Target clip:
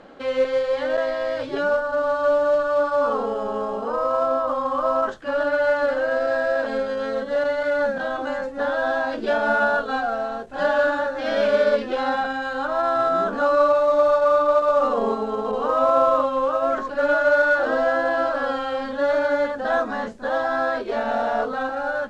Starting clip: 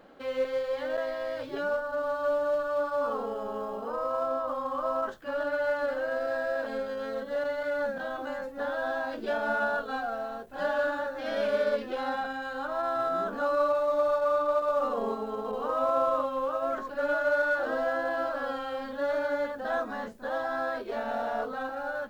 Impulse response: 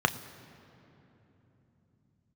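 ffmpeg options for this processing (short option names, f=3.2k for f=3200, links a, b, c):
-af "lowpass=f=8.5k:w=0.5412,lowpass=f=8.5k:w=1.3066,volume=8.5dB"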